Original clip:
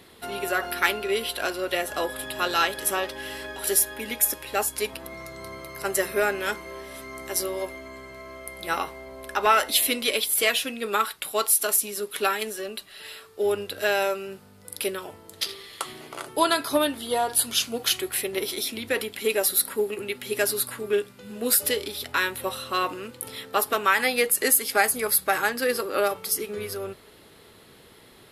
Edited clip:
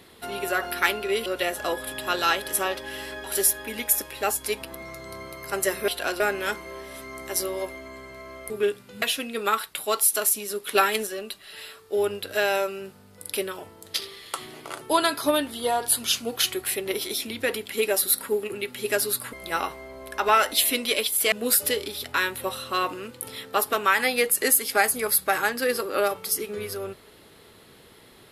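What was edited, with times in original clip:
1.26–1.58 s: move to 6.20 s
8.50–10.49 s: swap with 20.80–21.32 s
12.22–12.54 s: gain +4 dB

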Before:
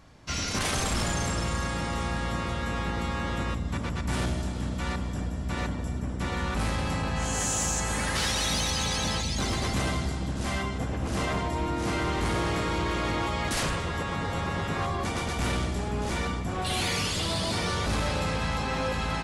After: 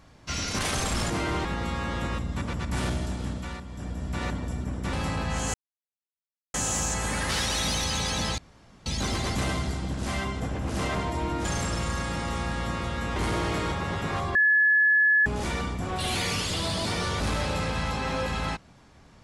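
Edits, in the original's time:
1.10–2.81 s: swap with 11.83–12.18 s
4.60–5.41 s: dip -9.5 dB, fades 0.39 s linear
6.29–6.79 s: delete
7.40 s: insert silence 1.00 s
9.24 s: insert room tone 0.48 s
12.74–14.38 s: delete
15.01–15.92 s: bleep 1.71 kHz -17 dBFS

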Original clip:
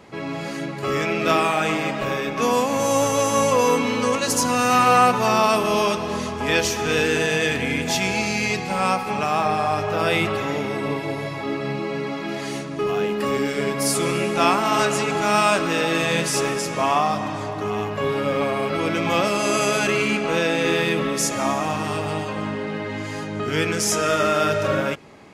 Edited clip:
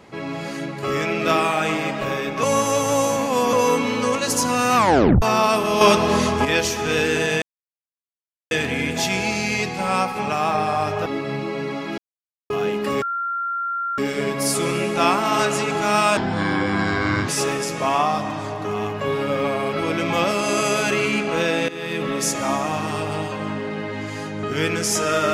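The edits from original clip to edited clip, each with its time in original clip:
2.43–3.53 s: reverse
4.76 s: tape stop 0.46 s
5.81–6.45 s: gain +7.5 dB
7.42 s: insert silence 1.09 s
9.97–11.42 s: delete
12.34–12.86 s: mute
13.38 s: add tone 1.38 kHz -22 dBFS 0.96 s
15.57–16.25 s: speed 61%
20.65–21.12 s: fade in, from -18 dB

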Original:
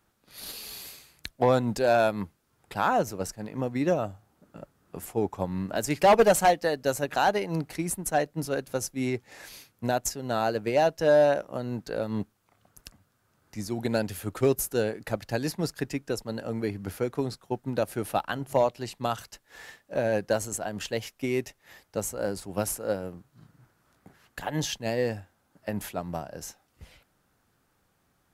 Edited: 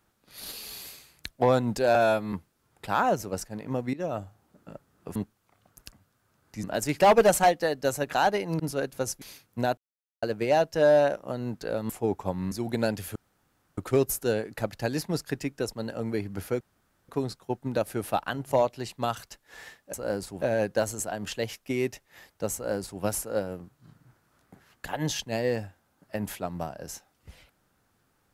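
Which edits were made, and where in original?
1.95–2.20 s: stretch 1.5×
3.81–4.08 s: fade in, from -21.5 dB
5.03–5.65 s: swap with 12.15–13.63 s
7.61–8.34 s: delete
8.96–9.47 s: delete
10.03–10.48 s: mute
14.27 s: insert room tone 0.62 s
17.10 s: insert room tone 0.48 s
22.08–22.56 s: copy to 19.95 s

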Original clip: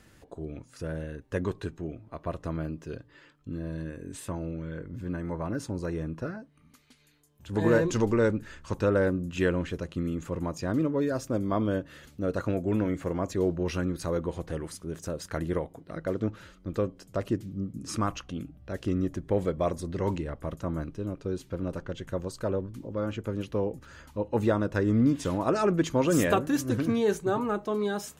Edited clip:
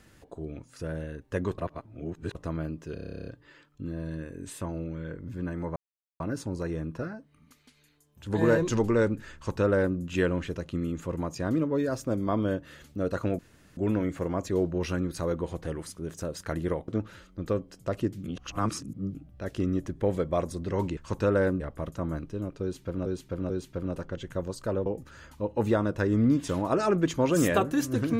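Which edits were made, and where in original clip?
1.58–2.35 s: reverse
2.94 s: stutter 0.03 s, 12 plays
5.43 s: insert silence 0.44 s
8.57–9.20 s: copy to 20.25 s
12.62 s: insert room tone 0.38 s
15.73–16.16 s: delete
17.52–18.43 s: reverse
21.27–21.71 s: loop, 3 plays
22.63–23.62 s: delete

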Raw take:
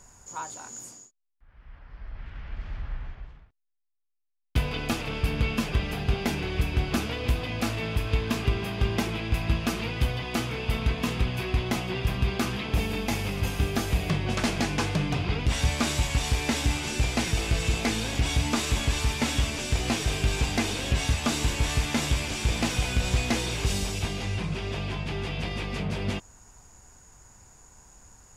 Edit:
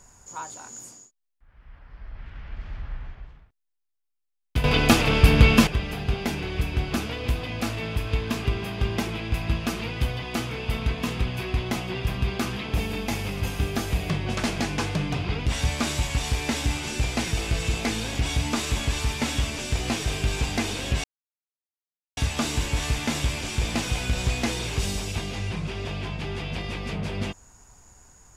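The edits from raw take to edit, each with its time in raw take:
4.64–5.67 s: gain +11 dB
21.04 s: insert silence 1.13 s

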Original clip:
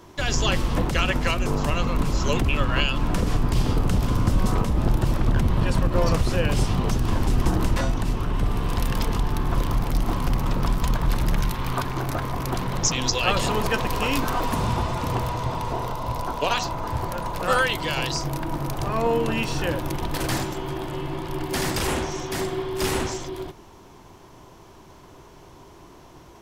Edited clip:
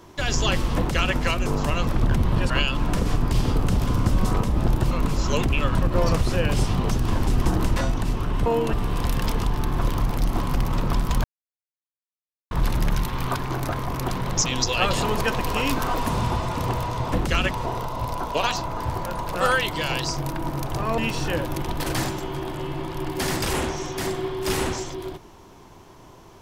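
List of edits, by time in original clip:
0.76–1.15 s: copy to 15.58 s
1.87–2.71 s: swap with 5.12–5.75 s
10.97 s: insert silence 1.27 s
19.05–19.32 s: move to 8.46 s

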